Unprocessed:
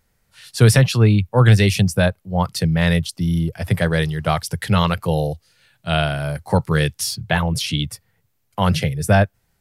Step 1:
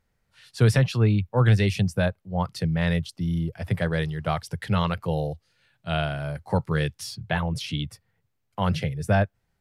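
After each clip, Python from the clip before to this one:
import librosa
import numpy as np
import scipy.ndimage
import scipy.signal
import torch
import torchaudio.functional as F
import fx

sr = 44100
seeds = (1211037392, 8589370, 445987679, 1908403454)

y = fx.lowpass(x, sr, hz=3600.0, slope=6)
y = y * 10.0 ** (-6.5 / 20.0)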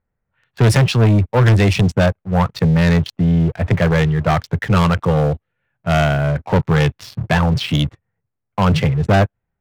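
y = fx.wiener(x, sr, points=9)
y = fx.env_lowpass(y, sr, base_hz=2000.0, full_db=-16.0)
y = fx.leveller(y, sr, passes=3)
y = y * 10.0 ** (3.0 / 20.0)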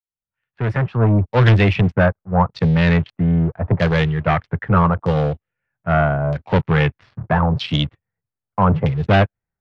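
y = fx.fade_in_head(x, sr, length_s=1.25)
y = fx.filter_lfo_lowpass(y, sr, shape='saw_down', hz=0.79, low_hz=880.0, high_hz=4700.0, q=1.5)
y = fx.upward_expand(y, sr, threshold_db=-28.0, expansion=1.5)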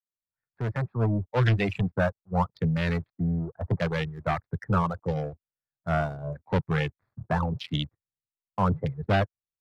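y = fx.wiener(x, sr, points=15)
y = fx.dereverb_blind(y, sr, rt60_s=1.3)
y = y * 10.0 ** (-8.5 / 20.0)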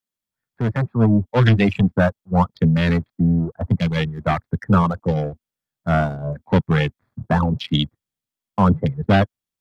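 y = fx.spec_box(x, sr, start_s=3.69, length_s=0.27, low_hz=270.0, high_hz=2000.0, gain_db=-9)
y = fx.small_body(y, sr, hz=(230.0, 3300.0), ring_ms=35, db=9)
y = y * 10.0 ** (6.5 / 20.0)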